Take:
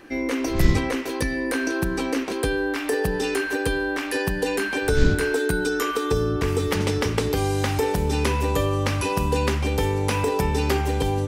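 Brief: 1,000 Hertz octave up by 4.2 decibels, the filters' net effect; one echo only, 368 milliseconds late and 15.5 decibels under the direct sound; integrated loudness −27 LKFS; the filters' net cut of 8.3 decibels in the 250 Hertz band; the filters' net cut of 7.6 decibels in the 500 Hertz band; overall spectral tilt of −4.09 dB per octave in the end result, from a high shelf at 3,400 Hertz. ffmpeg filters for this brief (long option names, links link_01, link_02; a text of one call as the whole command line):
ffmpeg -i in.wav -af "equalizer=frequency=250:width_type=o:gain=-9,equalizer=frequency=500:width_type=o:gain=-7.5,equalizer=frequency=1000:width_type=o:gain=7,highshelf=frequency=3400:gain=5.5,aecho=1:1:368:0.168,volume=-3dB" out.wav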